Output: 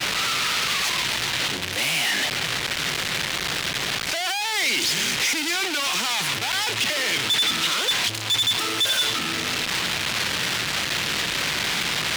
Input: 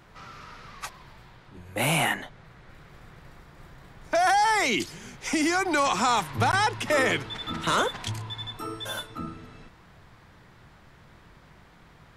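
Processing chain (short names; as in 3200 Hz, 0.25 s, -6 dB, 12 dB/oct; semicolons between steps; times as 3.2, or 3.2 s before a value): infinite clipping; weighting filter D; expander -25 dBFS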